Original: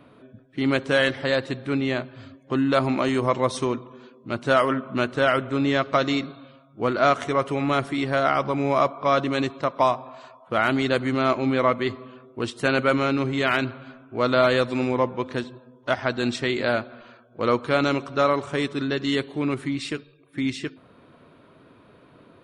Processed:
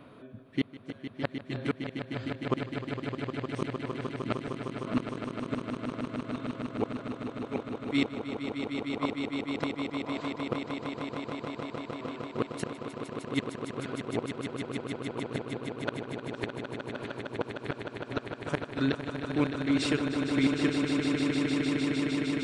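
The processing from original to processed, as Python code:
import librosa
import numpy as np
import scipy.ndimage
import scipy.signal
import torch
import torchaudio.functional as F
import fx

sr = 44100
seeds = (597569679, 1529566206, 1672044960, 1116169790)

y = fx.gate_flip(x, sr, shuts_db=-16.0, range_db=-41)
y = fx.echo_swell(y, sr, ms=153, loudest=8, wet_db=-8.0)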